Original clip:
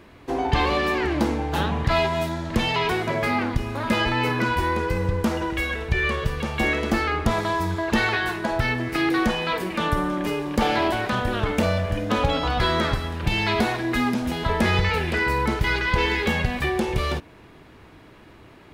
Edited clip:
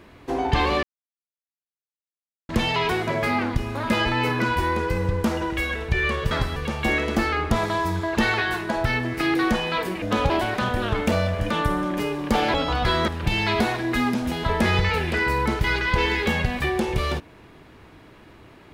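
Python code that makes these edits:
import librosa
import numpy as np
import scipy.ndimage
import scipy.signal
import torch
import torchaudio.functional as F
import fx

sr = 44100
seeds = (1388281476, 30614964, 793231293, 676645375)

y = fx.edit(x, sr, fx.silence(start_s=0.83, length_s=1.66),
    fx.swap(start_s=9.77, length_s=1.04, other_s=12.01, other_length_s=0.28),
    fx.move(start_s=12.83, length_s=0.25, to_s=6.31), tone=tone)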